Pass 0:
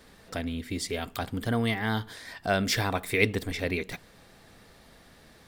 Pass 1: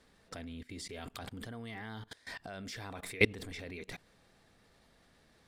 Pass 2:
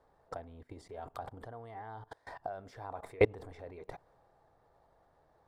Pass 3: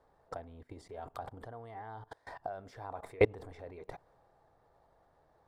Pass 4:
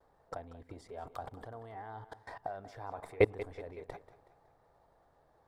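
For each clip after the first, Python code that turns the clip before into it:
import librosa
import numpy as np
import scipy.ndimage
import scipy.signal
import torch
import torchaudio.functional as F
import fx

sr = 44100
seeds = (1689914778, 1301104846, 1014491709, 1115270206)

y1 = scipy.signal.sosfilt(scipy.signal.butter(2, 11000.0, 'lowpass', fs=sr, output='sos'), x)
y1 = fx.level_steps(y1, sr, step_db=22)
y2 = fx.low_shelf(y1, sr, hz=370.0, db=-3.0)
y2 = fx.transient(y2, sr, attack_db=8, sustain_db=2)
y2 = fx.curve_eq(y2, sr, hz=(140.0, 220.0, 310.0, 840.0, 2500.0), db=(0, -11, -2, 8, -17))
y2 = y2 * librosa.db_to_amplitude(-1.5)
y3 = y2
y4 = fx.vibrato(y3, sr, rate_hz=0.49, depth_cents=22.0)
y4 = fx.echo_feedback(y4, sr, ms=186, feedback_pct=48, wet_db=-15.5)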